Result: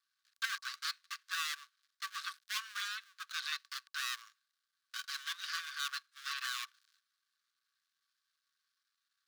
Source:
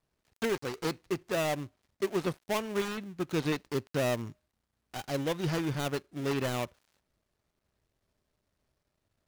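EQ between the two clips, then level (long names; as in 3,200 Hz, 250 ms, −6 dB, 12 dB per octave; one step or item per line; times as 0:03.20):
Chebyshev high-pass with heavy ripple 1,100 Hz, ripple 9 dB
+5.0 dB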